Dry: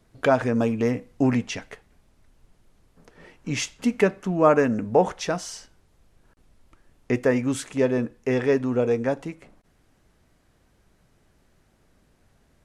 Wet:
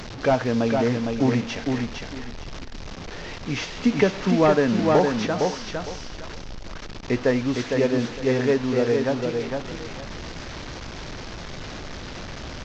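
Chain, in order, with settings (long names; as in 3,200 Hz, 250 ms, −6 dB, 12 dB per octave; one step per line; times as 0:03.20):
linear delta modulator 32 kbit/s, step −30 dBFS
repeating echo 458 ms, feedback 23%, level −4.5 dB
0:03.85–0:05.27: multiband upward and downward compressor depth 70%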